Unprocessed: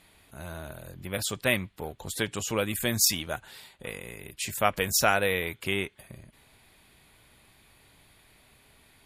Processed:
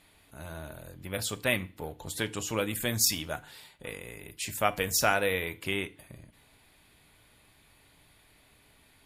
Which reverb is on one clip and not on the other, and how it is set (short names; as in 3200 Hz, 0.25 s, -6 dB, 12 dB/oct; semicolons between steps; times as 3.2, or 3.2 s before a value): FDN reverb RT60 0.39 s, low-frequency decay 1.35×, high-frequency decay 0.9×, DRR 12 dB; gain -2.5 dB